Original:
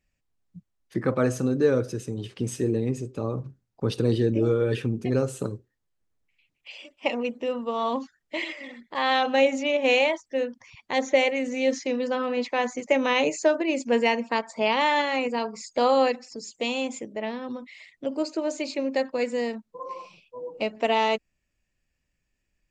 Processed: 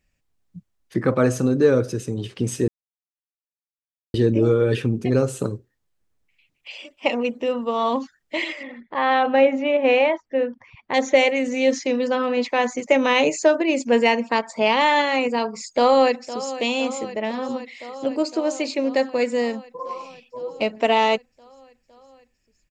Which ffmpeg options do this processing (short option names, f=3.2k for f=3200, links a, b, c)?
-filter_complex "[0:a]asettb=1/sr,asplit=3[a][b][c];[a]atrim=end=8.634[d];[b]atrim=start=8.63:end=10.94,asetpts=PTS-STARTPTS,afade=t=in:d=0.004:c=qsin,afade=t=out:st=2.306:d=0.004:c=qsin,lowpass=2.1k[e];[c]atrim=start=10.936[f];[d][e]acrossfade=d=0.004:c1=hsin:c2=qsin[g];[g][f]acrossfade=d=0.004:c1=qsin:c2=hsin,asplit=2[h][i];[i]afade=t=in:st=15.73:d=0.01,afade=t=out:st=16.53:d=0.01,aecho=0:1:510|1020|1530|2040|2550|3060|3570|4080|4590|5100|5610|6120:0.188365|0.150692|0.120554|0.0964428|0.0771543|0.0617234|0.0493787|0.039503|0.0316024|0.0252819|0.0202255|0.0161804[j];[h][j]amix=inputs=2:normalize=0,asplit=3[k][l][m];[k]atrim=end=2.68,asetpts=PTS-STARTPTS,afade=t=out:st=2.676:d=0.004:c=hsin[n];[l]atrim=start=2.68:end=4.14,asetpts=PTS-STARTPTS,volume=0[o];[m]atrim=start=4.14,asetpts=PTS-STARTPTS,afade=t=in:d=0.004:c=hsin[p];[n][o][p]concat=n=3:v=0:a=1,acontrast=25"